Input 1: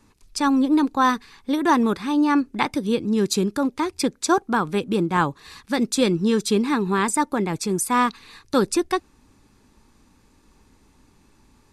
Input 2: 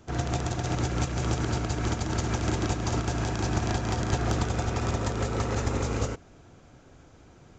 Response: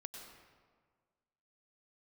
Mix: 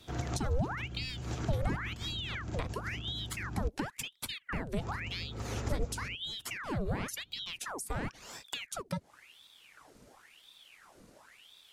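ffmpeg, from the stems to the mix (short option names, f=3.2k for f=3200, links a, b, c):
-filter_complex "[0:a]highshelf=f=7.8k:g=5,acompressor=threshold=-23dB:ratio=4,aeval=exprs='val(0)*sin(2*PI*1900*n/s+1900*0.9/0.95*sin(2*PI*0.95*n/s))':c=same,volume=0.5dB,asplit=2[a][b];[1:a]volume=-6.5dB,asplit=3[c][d][e];[c]atrim=end=3.68,asetpts=PTS-STARTPTS,afade=t=out:st=3.676:d=0.004:c=hsin[f];[d]atrim=start=3.68:end=4.79,asetpts=PTS-STARTPTS,volume=0[g];[e]atrim=start=4.79,asetpts=PTS-STARTPTS,afade=t=in:d=0.004:c=hsin[h];[f][g][h]concat=n=3:v=0:a=1[i];[b]apad=whole_len=334627[j];[i][j]sidechaincompress=threshold=-29dB:ratio=8:attack=47:release=891[k];[a][k]amix=inputs=2:normalize=0,acrossover=split=270[l][m];[m]acompressor=threshold=-37dB:ratio=10[n];[l][n]amix=inputs=2:normalize=0"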